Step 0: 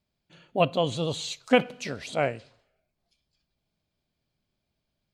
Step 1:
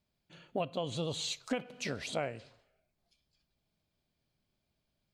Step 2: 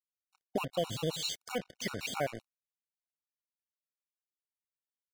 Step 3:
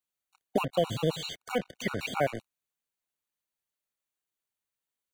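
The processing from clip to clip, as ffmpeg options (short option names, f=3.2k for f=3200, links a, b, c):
-af "acompressor=threshold=-29dB:ratio=16,volume=-1.5dB"
-af "acrusher=bits=6:mix=0:aa=0.5,afftfilt=real='re*gt(sin(2*PI*7.7*pts/sr)*(1-2*mod(floor(b*sr/1024/740),2)),0)':imag='im*gt(sin(2*PI*7.7*pts/sr)*(1-2*mod(floor(b*sr/1024/740),2)),0)':win_size=1024:overlap=0.75,volume=5dB"
-filter_complex "[0:a]bandreject=f=5.2k:w=5.6,acrossover=split=210|2900[a][b][c];[c]acompressor=threshold=-51dB:ratio=5[d];[a][b][d]amix=inputs=3:normalize=0,volume=6dB"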